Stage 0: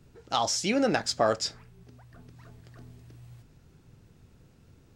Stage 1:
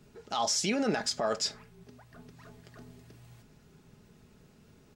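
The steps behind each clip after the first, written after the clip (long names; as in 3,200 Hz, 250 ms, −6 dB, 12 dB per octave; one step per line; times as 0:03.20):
low-shelf EQ 87 Hz −10 dB
brickwall limiter −22.5 dBFS, peak gain reduction 11 dB
comb filter 4.8 ms, depth 43%
level +1.5 dB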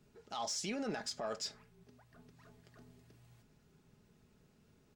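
soft clipping −19 dBFS, distortion −24 dB
level −9 dB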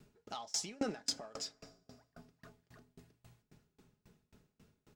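feedback delay network reverb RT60 3.1 s, high-frequency decay 0.7×, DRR 16.5 dB
tremolo with a ramp in dB decaying 3.7 Hz, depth 30 dB
level +8 dB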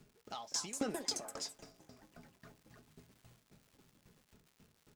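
surface crackle 240 per second −54 dBFS
delay with pitch and tempo change per echo 301 ms, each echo +4 semitones, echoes 2, each echo −6 dB
level −1 dB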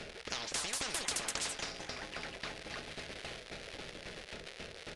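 downsampling to 22,050 Hz
octave-band graphic EQ 125/250/500/1,000/2,000/4,000/8,000 Hz −11/−11/+11/−9/+4/+3/−12 dB
every bin compressed towards the loudest bin 10 to 1
level +6 dB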